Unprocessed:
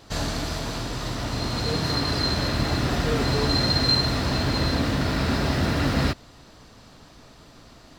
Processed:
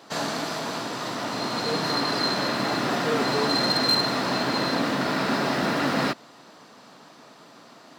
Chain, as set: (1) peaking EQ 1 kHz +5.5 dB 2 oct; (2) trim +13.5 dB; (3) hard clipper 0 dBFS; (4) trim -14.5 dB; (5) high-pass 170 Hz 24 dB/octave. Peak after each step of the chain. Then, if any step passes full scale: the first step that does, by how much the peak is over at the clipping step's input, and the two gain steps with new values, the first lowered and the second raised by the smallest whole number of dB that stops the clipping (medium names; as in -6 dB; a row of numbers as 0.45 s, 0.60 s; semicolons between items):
-8.5 dBFS, +5.0 dBFS, 0.0 dBFS, -14.5 dBFS, -11.5 dBFS; step 2, 5.0 dB; step 2 +8.5 dB, step 4 -9.5 dB